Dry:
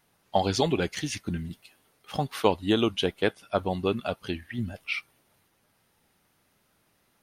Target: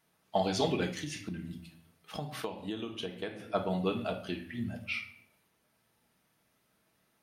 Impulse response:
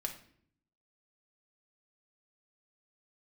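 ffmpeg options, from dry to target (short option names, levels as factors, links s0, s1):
-filter_complex "[0:a]highpass=52[s0];[1:a]atrim=start_sample=2205[s1];[s0][s1]afir=irnorm=-1:irlink=0,asplit=3[s2][s3][s4];[s2]afade=t=out:st=0.92:d=0.02[s5];[s3]acompressor=threshold=0.0316:ratio=8,afade=t=in:st=0.92:d=0.02,afade=t=out:st=3.39:d=0.02[s6];[s4]afade=t=in:st=3.39:d=0.02[s7];[s5][s6][s7]amix=inputs=3:normalize=0,volume=0.596"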